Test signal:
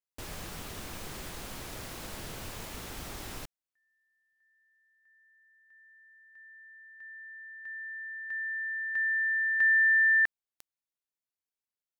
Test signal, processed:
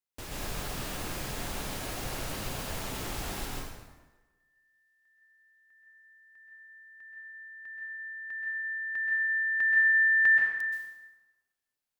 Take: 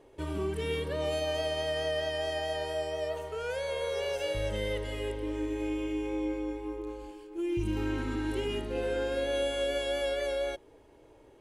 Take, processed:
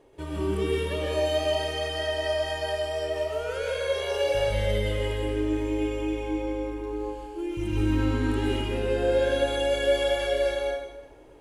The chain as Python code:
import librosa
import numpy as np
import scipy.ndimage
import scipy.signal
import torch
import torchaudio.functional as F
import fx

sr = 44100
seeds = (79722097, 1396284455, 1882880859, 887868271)

y = fx.rev_plate(x, sr, seeds[0], rt60_s=1.2, hf_ratio=0.75, predelay_ms=115, drr_db=-4.0)